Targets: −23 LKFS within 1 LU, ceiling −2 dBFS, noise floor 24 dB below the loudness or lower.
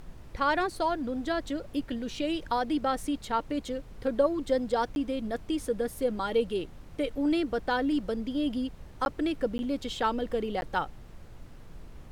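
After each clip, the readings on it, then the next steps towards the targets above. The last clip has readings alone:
number of dropouts 4; longest dropout 11 ms; background noise floor −48 dBFS; target noise floor −55 dBFS; integrated loudness −30.5 LKFS; sample peak −13.5 dBFS; target loudness −23.0 LKFS
→ repair the gap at 0:04.95/0:09.05/0:09.58/0:10.61, 11 ms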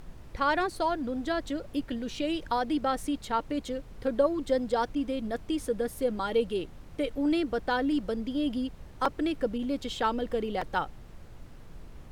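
number of dropouts 0; background noise floor −48 dBFS; target noise floor −55 dBFS
→ noise reduction from a noise print 7 dB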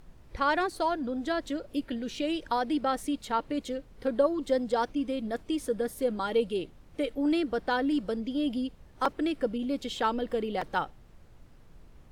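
background noise floor −54 dBFS; target noise floor −55 dBFS
→ noise reduction from a noise print 6 dB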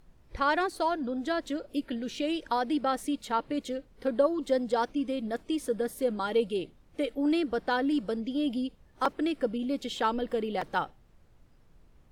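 background noise floor −60 dBFS; integrated loudness −30.5 LKFS; sample peak −14.0 dBFS; target loudness −23.0 LKFS
→ level +7.5 dB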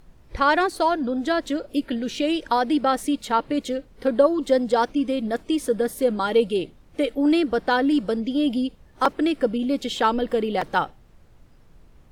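integrated loudness −23.0 LKFS; sample peak −6.5 dBFS; background noise floor −52 dBFS

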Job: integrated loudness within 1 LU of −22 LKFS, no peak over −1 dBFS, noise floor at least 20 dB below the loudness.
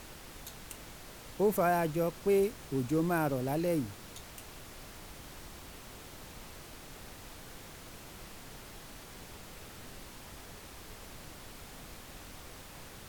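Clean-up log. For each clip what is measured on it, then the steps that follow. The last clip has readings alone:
background noise floor −50 dBFS; target noise floor −53 dBFS; integrated loudness −32.5 LKFS; sample peak −17.0 dBFS; target loudness −22.0 LKFS
→ noise reduction from a noise print 6 dB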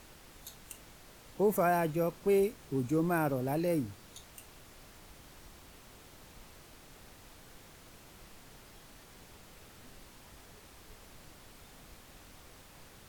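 background noise floor −56 dBFS; integrated loudness −31.0 LKFS; sample peak −17.5 dBFS; target loudness −22.0 LKFS
→ level +9 dB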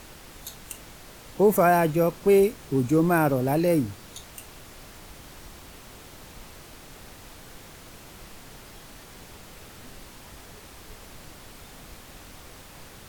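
integrated loudness −22.0 LKFS; sample peak −8.5 dBFS; background noise floor −47 dBFS

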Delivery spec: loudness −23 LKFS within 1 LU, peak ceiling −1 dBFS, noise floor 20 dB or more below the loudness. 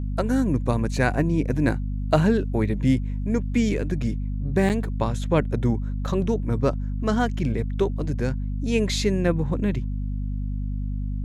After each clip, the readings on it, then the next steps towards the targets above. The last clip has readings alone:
number of dropouts 1; longest dropout 7.8 ms; mains hum 50 Hz; hum harmonics up to 250 Hz; level of the hum −25 dBFS; integrated loudness −24.5 LKFS; sample peak −6.0 dBFS; target loudness −23.0 LKFS
→ repair the gap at 0:04.69, 7.8 ms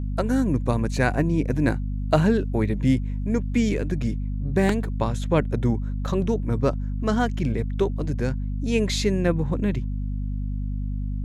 number of dropouts 0; mains hum 50 Hz; hum harmonics up to 250 Hz; level of the hum −24 dBFS
→ mains-hum notches 50/100/150/200/250 Hz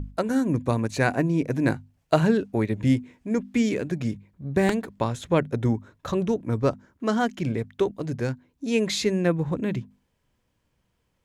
mains hum none found; integrated loudness −25.5 LKFS; sample peak −5.5 dBFS; target loudness −23.0 LKFS
→ level +2.5 dB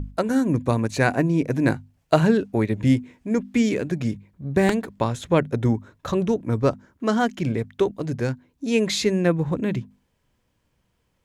integrated loudness −23.0 LKFS; sample peak −3.0 dBFS; background noise floor −71 dBFS

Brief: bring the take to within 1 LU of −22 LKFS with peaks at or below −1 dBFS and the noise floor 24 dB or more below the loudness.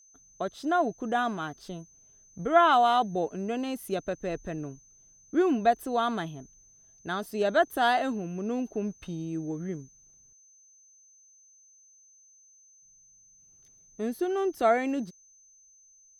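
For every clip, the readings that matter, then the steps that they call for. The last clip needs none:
interfering tone 6,200 Hz; level of the tone −56 dBFS; integrated loudness −28.5 LKFS; sample peak −9.0 dBFS; target loudness −22.0 LKFS
→ notch filter 6,200 Hz, Q 30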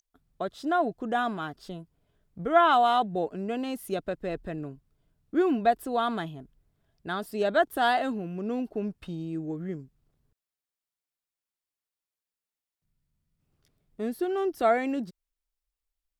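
interfering tone none found; integrated loudness −28.0 LKFS; sample peak −9.0 dBFS; target loudness −22.0 LKFS
→ level +6 dB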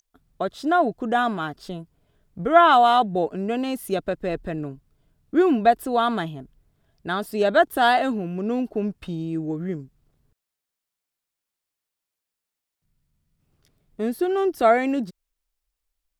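integrated loudness −22.0 LKFS; sample peak −3.0 dBFS; background noise floor −85 dBFS

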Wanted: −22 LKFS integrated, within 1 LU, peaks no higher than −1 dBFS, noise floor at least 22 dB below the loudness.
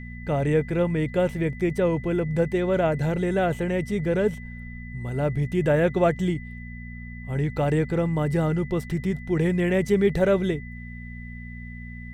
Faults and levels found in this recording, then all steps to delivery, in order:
mains hum 60 Hz; hum harmonics up to 240 Hz; level of the hum −36 dBFS; interfering tone 2,000 Hz; level of the tone −43 dBFS; integrated loudness −24.5 LKFS; sample peak −9.0 dBFS; target loudness −22.0 LKFS
→ hum removal 60 Hz, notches 4
notch filter 2,000 Hz, Q 30
level +2.5 dB

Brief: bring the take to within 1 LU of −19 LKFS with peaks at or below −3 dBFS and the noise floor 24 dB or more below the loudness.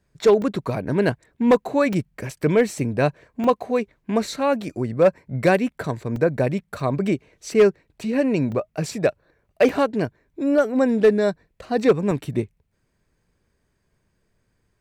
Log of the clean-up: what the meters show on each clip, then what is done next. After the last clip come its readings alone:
share of clipped samples 0.7%; peaks flattened at −8.5 dBFS; number of dropouts 8; longest dropout 2.2 ms; integrated loudness −22.0 LKFS; sample peak −8.5 dBFS; target loudness −19.0 LKFS
→ clipped peaks rebuilt −8.5 dBFS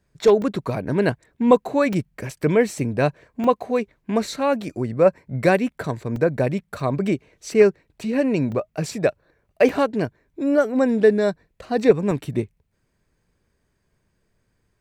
share of clipped samples 0.0%; number of dropouts 8; longest dropout 2.2 ms
→ repair the gap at 0:00.42/0:01.93/0:03.44/0:06.16/0:06.80/0:08.52/0:09.69/0:12.11, 2.2 ms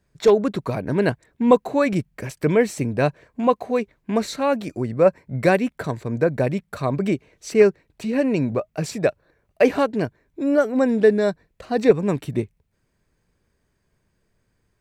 number of dropouts 0; integrated loudness −21.5 LKFS; sample peak −2.0 dBFS; target loudness −19.0 LKFS
→ level +2.5 dB
brickwall limiter −3 dBFS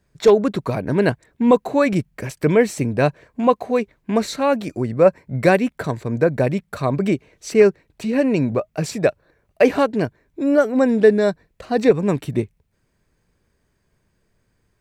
integrated loudness −19.5 LKFS; sample peak −3.0 dBFS; background noise floor −68 dBFS

